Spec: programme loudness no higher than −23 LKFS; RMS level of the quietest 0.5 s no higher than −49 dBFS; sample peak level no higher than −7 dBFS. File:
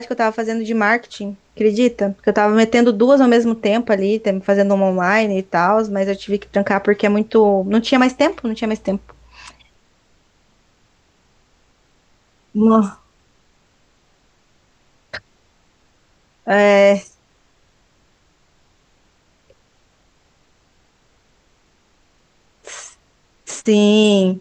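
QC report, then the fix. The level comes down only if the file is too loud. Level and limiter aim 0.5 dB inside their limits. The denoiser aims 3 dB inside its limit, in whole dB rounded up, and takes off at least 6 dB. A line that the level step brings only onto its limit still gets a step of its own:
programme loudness −16.0 LKFS: out of spec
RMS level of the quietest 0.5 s −58 dBFS: in spec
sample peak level −3.0 dBFS: out of spec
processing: level −7.5 dB

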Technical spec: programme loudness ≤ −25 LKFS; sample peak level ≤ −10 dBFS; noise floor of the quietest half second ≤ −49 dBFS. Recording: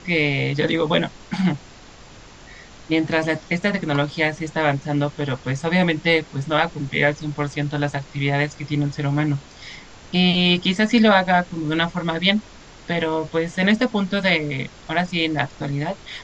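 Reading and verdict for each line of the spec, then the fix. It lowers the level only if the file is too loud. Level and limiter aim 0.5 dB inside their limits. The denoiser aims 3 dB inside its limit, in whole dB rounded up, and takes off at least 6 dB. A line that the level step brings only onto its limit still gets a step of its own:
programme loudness −21.0 LKFS: out of spec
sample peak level −3.0 dBFS: out of spec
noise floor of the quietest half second −44 dBFS: out of spec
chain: broadband denoise 6 dB, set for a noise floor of −44 dBFS
level −4.5 dB
brickwall limiter −10.5 dBFS

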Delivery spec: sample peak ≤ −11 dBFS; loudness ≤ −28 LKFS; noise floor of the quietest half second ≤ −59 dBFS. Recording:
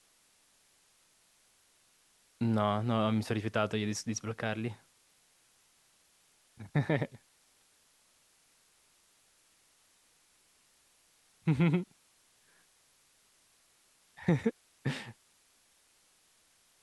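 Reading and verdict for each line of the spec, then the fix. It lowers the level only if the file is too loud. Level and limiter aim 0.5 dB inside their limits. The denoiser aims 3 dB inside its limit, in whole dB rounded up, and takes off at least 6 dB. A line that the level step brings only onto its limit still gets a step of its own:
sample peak −14.0 dBFS: in spec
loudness −33.0 LKFS: in spec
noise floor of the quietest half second −68 dBFS: in spec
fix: no processing needed

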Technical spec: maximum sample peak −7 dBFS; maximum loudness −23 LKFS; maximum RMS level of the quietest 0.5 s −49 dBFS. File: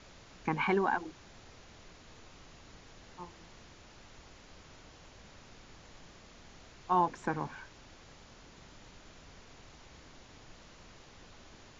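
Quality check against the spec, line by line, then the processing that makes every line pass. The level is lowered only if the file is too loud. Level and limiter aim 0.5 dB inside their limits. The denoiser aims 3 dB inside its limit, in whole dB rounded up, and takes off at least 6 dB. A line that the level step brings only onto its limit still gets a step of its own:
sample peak −16.5 dBFS: in spec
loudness −33.5 LKFS: in spec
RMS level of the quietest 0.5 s −55 dBFS: in spec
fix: no processing needed

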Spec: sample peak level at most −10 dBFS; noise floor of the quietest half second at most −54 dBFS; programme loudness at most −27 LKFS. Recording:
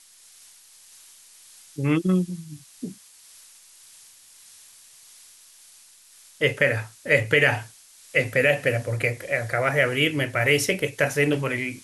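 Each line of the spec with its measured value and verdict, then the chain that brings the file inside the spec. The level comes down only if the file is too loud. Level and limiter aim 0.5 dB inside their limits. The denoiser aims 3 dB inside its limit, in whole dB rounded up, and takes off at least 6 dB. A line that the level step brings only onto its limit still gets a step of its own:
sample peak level −6.0 dBFS: out of spec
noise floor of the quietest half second −52 dBFS: out of spec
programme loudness −22.5 LKFS: out of spec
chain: level −5 dB

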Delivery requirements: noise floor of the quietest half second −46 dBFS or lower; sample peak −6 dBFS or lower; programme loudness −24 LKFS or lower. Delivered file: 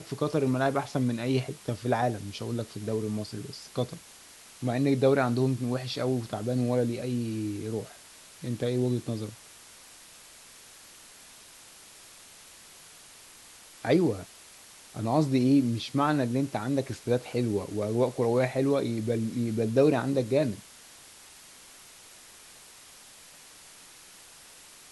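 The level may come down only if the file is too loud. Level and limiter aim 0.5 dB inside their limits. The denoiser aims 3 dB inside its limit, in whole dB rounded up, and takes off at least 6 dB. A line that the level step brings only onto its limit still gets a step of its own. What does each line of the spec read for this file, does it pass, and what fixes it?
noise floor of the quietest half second −51 dBFS: in spec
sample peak −10.5 dBFS: in spec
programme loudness −28.5 LKFS: in spec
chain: no processing needed

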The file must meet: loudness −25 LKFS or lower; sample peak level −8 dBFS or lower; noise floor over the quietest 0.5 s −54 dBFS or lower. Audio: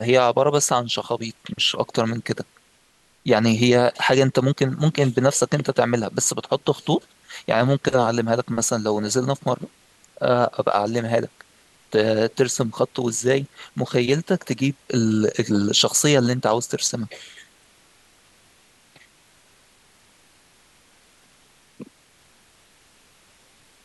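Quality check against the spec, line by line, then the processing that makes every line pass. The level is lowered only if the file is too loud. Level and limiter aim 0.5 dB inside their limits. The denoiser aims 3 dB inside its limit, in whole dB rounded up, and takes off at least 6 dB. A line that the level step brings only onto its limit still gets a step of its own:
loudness −21.0 LKFS: out of spec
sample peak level −5.0 dBFS: out of spec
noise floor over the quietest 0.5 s −59 dBFS: in spec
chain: level −4.5 dB

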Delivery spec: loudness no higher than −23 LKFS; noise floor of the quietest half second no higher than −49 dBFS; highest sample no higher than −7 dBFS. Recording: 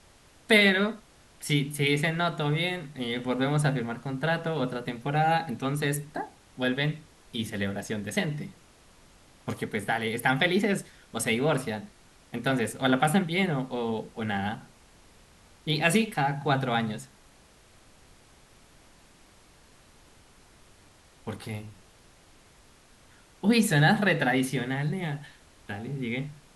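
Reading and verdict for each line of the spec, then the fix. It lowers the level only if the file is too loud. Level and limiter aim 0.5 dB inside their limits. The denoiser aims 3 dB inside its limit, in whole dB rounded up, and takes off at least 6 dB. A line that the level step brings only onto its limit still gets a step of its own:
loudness −27.5 LKFS: in spec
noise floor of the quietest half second −57 dBFS: in spec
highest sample −9.0 dBFS: in spec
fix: no processing needed

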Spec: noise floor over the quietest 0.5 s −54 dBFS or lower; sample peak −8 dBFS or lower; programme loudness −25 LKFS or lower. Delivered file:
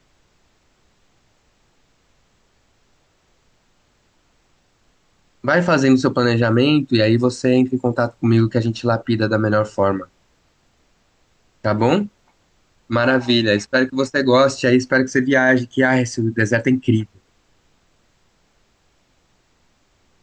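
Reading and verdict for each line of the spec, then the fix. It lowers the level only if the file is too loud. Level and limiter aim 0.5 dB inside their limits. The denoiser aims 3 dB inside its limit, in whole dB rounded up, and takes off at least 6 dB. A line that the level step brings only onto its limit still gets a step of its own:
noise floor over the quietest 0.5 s −61 dBFS: in spec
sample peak −4.0 dBFS: out of spec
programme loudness −17.5 LKFS: out of spec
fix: level −8 dB

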